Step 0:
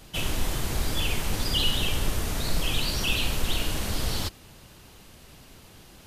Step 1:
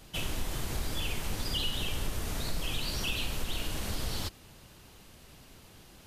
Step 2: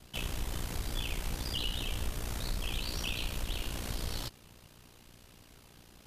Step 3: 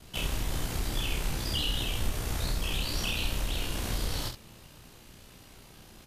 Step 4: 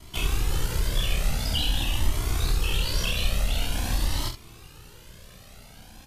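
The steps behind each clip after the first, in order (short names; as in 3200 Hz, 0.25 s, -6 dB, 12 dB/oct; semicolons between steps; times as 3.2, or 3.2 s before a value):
compressor 2:1, threshold -26 dBFS, peak gain reduction 5 dB; gain -4 dB
ring modulator 30 Hz
early reflections 27 ms -4 dB, 68 ms -8 dB; gain +3 dB
cascading flanger rising 0.47 Hz; gain +8 dB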